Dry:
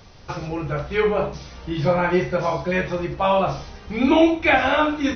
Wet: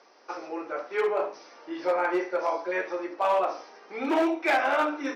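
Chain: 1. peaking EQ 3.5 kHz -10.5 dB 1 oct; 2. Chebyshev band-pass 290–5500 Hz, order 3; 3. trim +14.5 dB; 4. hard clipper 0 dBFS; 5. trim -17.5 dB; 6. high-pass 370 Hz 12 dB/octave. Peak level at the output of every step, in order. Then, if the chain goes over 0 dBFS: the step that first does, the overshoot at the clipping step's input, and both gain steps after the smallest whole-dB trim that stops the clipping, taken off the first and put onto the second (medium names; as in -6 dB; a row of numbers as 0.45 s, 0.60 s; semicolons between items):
-5.0 dBFS, -5.5 dBFS, +9.0 dBFS, 0.0 dBFS, -17.5 dBFS, -12.5 dBFS; step 3, 9.0 dB; step 3 +5.5 dB, step 5 -8.5 dB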